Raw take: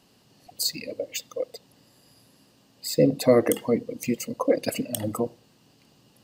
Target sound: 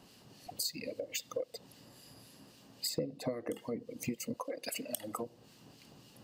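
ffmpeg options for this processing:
-filter_complex "[0:a]asettb=1/sr,asplit=3[s0][s1][s2];[s0]atrim=end=2.894[s3];[s1]atrim=start=2.89:end=3.53,asetpts=PTS-STARTPTS,afade=t=in:d=0.004:c=qsin,afade=t=out:st=0.636:d=0.004:c=qsin,highshelf=f=11000:g=-10[s4];[s2]atrim=start=3.526[s5];[s3][s4]acrossfade=d=0.004:c1=hsin:c2=qsin[s6];[s6][s5]acrossfade=d=0.004:c1=qsin:c2=hsin,asplit=3[s7][s8][s9];[s7]afade=t=out:st=4.36:d=0.02[s10];[s8]highpass=f=840:p=1,afade=t=in:st=4.36:d=0.02,afade=t=out:st=5.21:d=0.02[s11];[s9]afade=t=in:st=5.21:d=0.02[s12];[s10][s11][s12]amix=inputs=3:normalize=0,acompressor=threshold=0.0158:ratio=10,acrossover=split=1700[s13][s14];[s13]aeval=exprs='val(0)*(1-0.5/2+0.5/2*cos(2*PI*3.7*n/s))':c=same[s15];[s14]aeval=exprs='val(0)*(1-0.5/2-0.5/2*cos(2*PI*3.7*n/s))':c=same[s16];[s15][s16]amix=inputs=2:normalize=0,volume=1.5"

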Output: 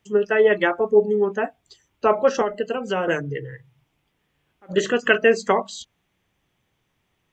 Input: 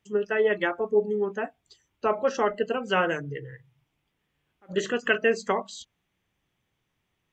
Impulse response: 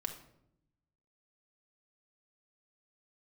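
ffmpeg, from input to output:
-filter_complex "[0:a]asettb=1/sr,asplit=3[s0][s1][s2];[s0]atrim=end=2.414[s3];[s1]atrim=start=2.41:end=3.08,asetpts=PTS-STARTPTS,afade=t=in:d=0.004:c=qsin,afade=t=out:st=0.666:d=0.004:c=qsin,acrossover=split=930|4000[s4][s5][s6];[s4]acompressor=threshold=0.0355:ratio=4[s7];[s5]acompressor=threshold=0.01:ratio=4[s8];[s6]acompressor=threshold=0.00355:ratio=4[s9];[s7][s8][s9]amix=inputs=3:normalize=0[s10];[s2]atrim=start=3.076[s11];[s3][s10]acrossfade=d=0.004:c1=hsin:c2=qsin[s12];[s12][s11]acrossfade=d=0.004:c1=qsin:c2=hsin,acrossover=split=840[s13][s14];[s13]crystalizer=i=9.5:c=0[s15];[s15][s14]amix=inputs=2:normalize=0,volume=1.88"

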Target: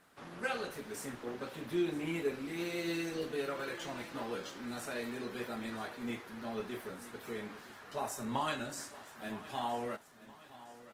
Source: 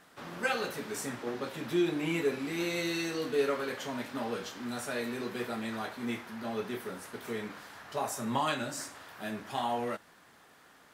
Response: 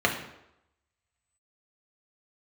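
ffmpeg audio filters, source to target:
-filter_complex "[0:a]asettb=1/sr,asplit=3[s0][s1][s2];[s0]atrim=end=2.874[s3];[s1]atrim=start=2.87:end=4.4,asetpts=PTS-STARTPTS,afade=t=in:d=0.004:c=qsin,afade=t=out:st=1.526:d=0.004:c=qsin,aecho=1:1:5.9:0.46,atrim=end_sample=67473[s4];[s2]atrim=start=4.396[s5];[s3][s4]acrossfade=d=0.004:c1=hsin:c2=qsin[s6];[s6][s5]acrossfade=d=0.004:c1=qsin:c2=hsin,asplit=2[s7][s8];[s8]aecho=0:1:966|1932|2898|3864:0.141|0.0678|0.0325|0.0156[s9];[s7][s9]amix=inputs=2:normalize=0,volume=0.596" -ar 48000 -c:a libopus -b:a 20k

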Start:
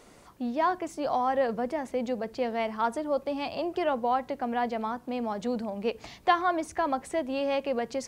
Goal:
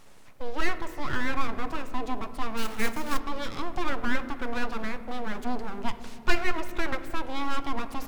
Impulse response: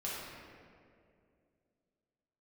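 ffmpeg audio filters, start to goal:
-filter_complex "[0:a]aeval=exprs='abs(val(0))':c=same,asettb=1/sr,asplit=3[s0][s1][s2];[s0]atrim=end=2.574[s3];[s1]atrim=start=2.57:end=3.2,asetpts=PTS-STARTPTS,afade=t=in:d=0.004:c=qsin,afade=t=out:st=0.626:d=0.004:c=qsin,acrusher=bits=2:mode=log:mix=0:aa=0.000001[s4];[s2]atrim=start=3.196[s5];[s3][s4]acrossfade=d=0.004:c1=hsin:c2=qsin[s6];[s6][s5]acrossfade=d=0.004:c1=qsin:c2=hsin,asplit=2[s7][s8];[1:a]atrim=start_sample=2205,lowpass=5400,lowshelf=f=330:g=10.5[s9];[s8][s9]afir=irnorm=-1:irlink=0,volume=0.2[s10];[s7][s10]amix=inputs=2:normalize=0"

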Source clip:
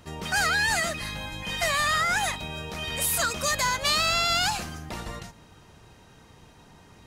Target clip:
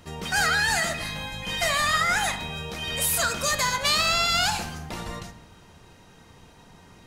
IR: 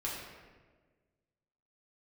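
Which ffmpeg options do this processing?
-filter_complex "[0:a]bandreject=f=62.13:t=h:w=4,bandreject=f=124.26:t=h:w=4,bandreject=f=186.39:t=h:w=4,bandreject=f=248.52:t=h:w=4,bandreject=f=310.65:t=h:w=4,bandreject=f=372.78:t=h:w=4,bandreject=f=434.91:t=h:w=4,bandreject=f=497.04:t=h:w=4,bandreject=f=559.17:t=h:w=4,bandreject=f=621.3:t=h:w=4,bandreject=f=683.43:t=h:w=4,bandreject=f=745.56:t=h:w=4,bandreject=f=807.69:t=h:w=4,bandreject=f=869.82:t=h:w=4,bandreject=f=931.95:t=h:w=4,bandreject=f=994.08:t=h:w=4,bandreject=f=1056.21:t=h:w=4,bandreject=f=1118.34:t=h:w=4,bandreject=f=1180.47:t=h:w=4,bandreject=f=1242.6:t=h:w=4,bandreject=f=1304.73:t=h:w=4,bandreject=f=1366.86:t=h:w=4,bandreject=f=1428.99:t=h:w=4,bandreject=f=1491.12:t=h:w=4,bandreject=f=1553.25:t=h:w=4,bandreject=f=1615.38:t=h:w=4,bandreject=f=1677.51:t=h:w=4,bandreject=f=1739.64:t=h:w=4,bandreject=f=1801.77:t=h:w=4,bandreject=f=1863.9:t=h:w=4,bandreject=f=1926.03:t=h:w=4,bandreject=f=1988.16:t=h:w=4,bandreject=f=2050.29:t=h:w=4,asplit=2[s0][s1];[1:a]atrim=start_sample=2205,asetrate=74970,aresample=44100[s2];[s1][s2]afir=irnorm=-1:irlink=0,volume=0.447[s3];[s0][s3]amix=inputs=2:normalize=0"

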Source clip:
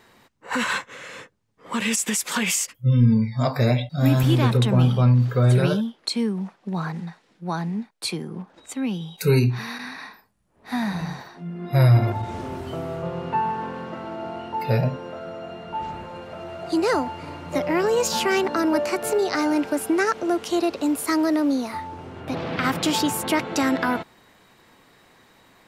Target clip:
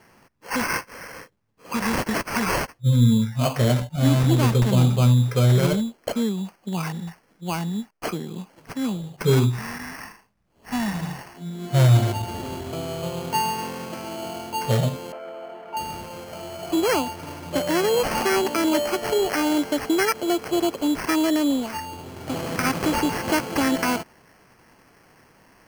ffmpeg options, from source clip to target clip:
-filter_complex "[0:a]acrusher=samples=12:mix=1:aa=0.000001,asettb=1/sr,asplit=3[s0][s1][s2];[s0]atrim=end=15.124[s3];[s1]atrim=start=15.12:end=15.77,asetpts=PTS-STARTPTS,afade=t=in:d=0.004:c=qsin,afade=t=out:st=0.646:d=0.004:c=qsin,acrossover=split=310 2400:gain=0.0891 1 0.0708[s4][s5][s6];[s4][s5][s6]amix=inputs=3:normalize=0[s7];[s2]atrim=start=15.766[s8];[s3][s7]acrossfade=d=0.004:c1=hsin:c2=qsin[s9];[s9][s8]acrossfade=d=0.004:c1=qsin:c2=hsin"

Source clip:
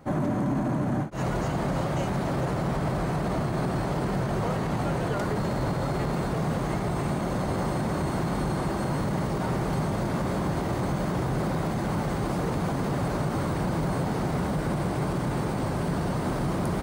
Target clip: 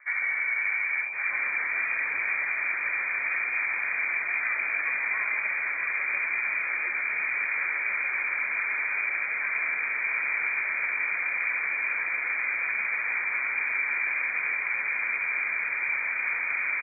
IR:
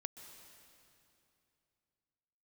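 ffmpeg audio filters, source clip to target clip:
-filter_complex "[0:a]acrossover=split=150|1700[s0][s1][s2];[s2]adelay=140[s3];[s0]adelay=540[s4];[s4][s1][s3]amix=inputs=3:normalize=0,lowpass=f=2100:t=q:w=0.5098,lowpass=f=2100:t=q:w=0.6013,lowpass=f=2100:t=q:w=0.9,lowpass=f=2100:t=q:w=2.563,afreqshift=-2500"

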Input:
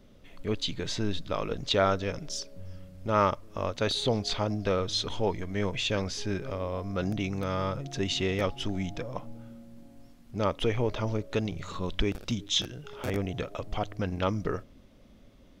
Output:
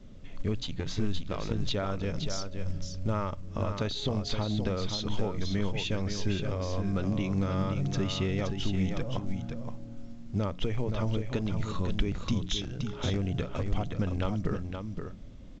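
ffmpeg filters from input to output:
-filter_complex "[0:a]bandreject=f=60:t=h:w=6,bandreject=f=120:t=h:w=6,bandreject=f=180:t=h:w=6,asettb=1/sr,asplit=3[s0][s1][s2];[s0]atrim=end=0.634[s3];[s1]atrim=start=0.63:end=1.53,asetpts=PTS-STARTPTS,afade=t=in:d=0.004:c=qsin,afade=t=out:st=0.896:d=0.004:c=qsin,aeval=exprs='0.158*(cos(1*acos(clip(val(0)/0.158,-1,1)))-cos(1*PI/2))+0.0158*(cos(3*acos(clip(val(0)/0.158,-1,1)))-cos(3*PI/2))+0.00794*(cos(8*acos(clip(val(0)/0.158,-1,1)))-cos(8*PI/2))':c=same[s4];[s2]atrim=start=1.526[s5];[s3][s4]acrossfade=d=0.004:c1=hsin:c2=qsin[s6];[s6][s5]acrossfade=d=0.004:c1=qsin:c2=hsin,adynamicequalizer=threshold=0.00447:dfrequency=100:dqfactor=2.4:tfrequency=100:tqfactor=2.4:attack=5:release=100:ratio=0.375:range=2.5:mode=cutabove:tftype=bell,acompressor=threshold=0.0251:ratio=4,bass=f=250:g=10,treble=f=4000:g=-1,asplit=2[s7][s8];[s8]aecho=0:1:522:0.473[s9];[s7][s9]amix=inputs=2:normalize=0" -ar 16000 -c:a pcm_alaw

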